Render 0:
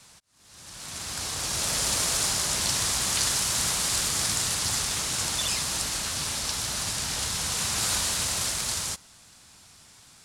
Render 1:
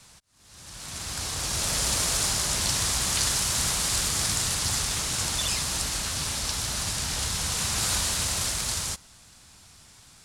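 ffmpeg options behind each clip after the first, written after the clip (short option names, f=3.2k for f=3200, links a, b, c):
-af "lowshelf=f=86:g=9.5"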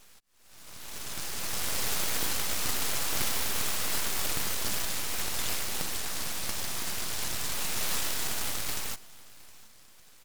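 -af "aeval=exprs='abs(val(0))':c=same,aecho=1:1:715:0.0794,volume=-1.5dB"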